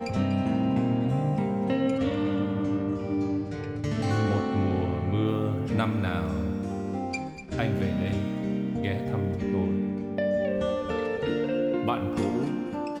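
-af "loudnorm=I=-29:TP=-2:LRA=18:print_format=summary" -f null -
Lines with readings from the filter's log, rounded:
Input Integrated:    -28.0 LUFS
Input True Peak:     -14.1 dBTP
Input LRA:             1.5 LU
Input Threshold:     -38.0 LUFS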